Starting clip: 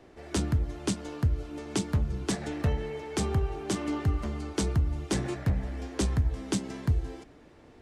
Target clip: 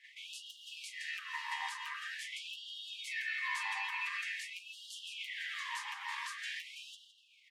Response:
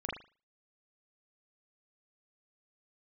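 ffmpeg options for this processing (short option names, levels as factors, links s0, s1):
-filter_complex "[0:a]highpass=590,acompressor=threshold=0.00891:ratio=6,aecho=1:1:5.1:0.97,asetrate=45938,aresample=44100,equalizer=f=2100:w=0.63:g=4.5,alimiter=level_in=2.66:limit=0.0631:level=0:latency=1:release=71,volume=0.376,asplit=2[s0][s1];[s1]asetrate=37084,aresample=44100,atempo=1.18921,volume=0.631[s2];[s0][s2]amix=inputs=2:normalize=0,agate=range=0.316:threshold=0.00224:ratio=16:detection=peak,tiltshelf=f=1300:g=4.5,aeval=exprs='val(0)*sin(2*PI*1400*n/s)':c=same,asplit=2[s3][s4];[s4]adelay=162,lowpass=f=4500:p=1,volume=0.355,asplit=2[s5][s6];[s6]adelay=162,lowpass=f=4500:p=1,volume=0.36,asplit=2[s7][s8];[s8]adelay=162,lowpass=f=4500:p=1,volume=0.36,asplit=2[s9][s10];[s10]adelay=162,lowpass=f=4500:p=1,volume=0.36[s11];[s3][s5][s7][s9][s11]amix=inputs=5:normalize=0,afftfilt=real='re*gte(b*sr/1024,770*pow(2800/770,0.5+0.5*sin(2*PI*0.46*pts/sr)))':imag='im*gte(b*sr/1024,770*pow(2800/770,0.5+0.5*sin(2*PI*0.46*pts/sr)))':win_size=1024:overlap=0.75,volume=1.78"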